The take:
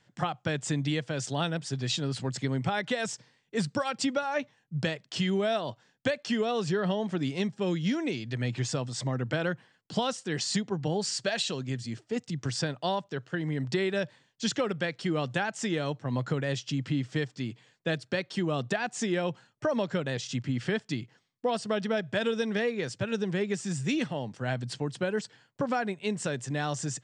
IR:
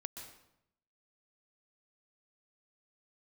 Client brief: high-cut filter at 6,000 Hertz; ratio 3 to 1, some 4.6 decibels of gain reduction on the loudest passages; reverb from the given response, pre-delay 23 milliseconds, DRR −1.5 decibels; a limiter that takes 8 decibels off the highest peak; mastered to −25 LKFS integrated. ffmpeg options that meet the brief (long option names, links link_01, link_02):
-filter_complex "[0:a]lowpass=6000,acompressor=threshold=-30dB:ratio=3,alimiter=level_in=1dB:limit=-24dB:level=0:latency=1,volume=-1dB,asplit=2[link_01][link_02];[1:a]atrim=start_sample=2205,adelay=23[link_03];[link_02][link_03]afir=irnorm=-1:irlink=0,volume=4dB[link_04];[link_01][link_04]amix=inputs=2:normalize=0,volume=7.5dB"